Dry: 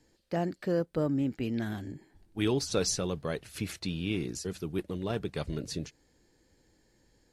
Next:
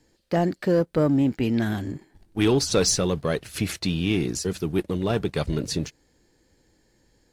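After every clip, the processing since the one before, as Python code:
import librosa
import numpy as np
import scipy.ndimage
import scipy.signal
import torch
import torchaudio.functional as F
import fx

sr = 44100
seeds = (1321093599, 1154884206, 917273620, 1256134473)

y = fx.leveller(x, sr, passes=1)
y = y * 10.0 ** (5.5 / 20.0)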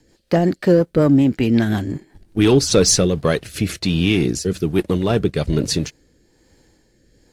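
y = fx.rotary_switch(x, sr, hz=5.5, then_hz=1.2, switch_at_s=2.49)
y = y * 10.0 ** (8.5 / 20.0)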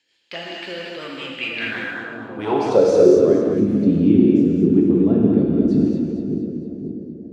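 y = fx.echo_split(x, sr, split_hz=620.0, low_ms=535, high_ms=230, feedback_pct=52, wet_db=-7.0)
y = fx.filter_sweep_bandpass(y, sr, from_hz=2900.0, to_hz=260.0, start_s=1.32, end_s=3.56, q=3.2)
y = fx.rev_gated(y, sr, seeds[0], gate_ms=270, shape='flat', drr_db=-2.5)
y = y * 10.0 ** (5.0 / 20.0)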